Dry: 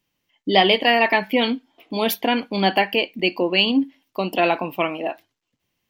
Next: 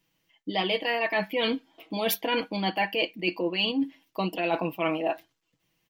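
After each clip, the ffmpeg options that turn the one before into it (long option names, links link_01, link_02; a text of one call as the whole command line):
ffmpeg -i in.wav -af "aecho=1:1:6.2:0.62,areverse,acompressor=threshold=-23dB:ratio=12,areverse" out.wav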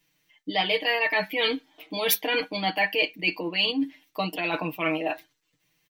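ffmpeg -i in.wav -af "tiltshelf=frequency=850:gain=-3.5,aecho=1:1:6.7:0.69" out.wav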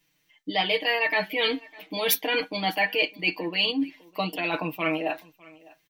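ffmpeg -i in.wav -af "aecho=1:1:604:0.0668" out.wav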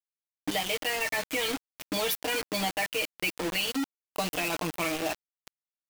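ffmpeg -i in.wav -af "acompressor=threshold=-31dB:ratio=10,acrusher=bits=5:mix=0:aa=0.000001,volume=4dB" out.wav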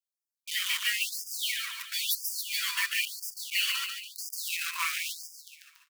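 ffmpeg -i in.wav -filter_complex "[0:a]asplit=2[link_01][link_02];[link_02]aecho=0:1:142|284|426|568|710|852:0.562|0.287|0.146|0.0746|0.038|0.0194[link_03];[link_01][link_03]amix=inputs=2:normalize=0,afftfilt=real='re*gte(b*sr/1024,910*pow(4800/910,0.5+0.5*sin(2*PI*0.99*pts/sr)))':imag='im*gte(b*sr/1024,910*pow(4800/910,0.5+0.5*sin(2*PI*0.99*pts/sr)))':win_size=1024:overlap=0.75,volume=1.5dB" out.wav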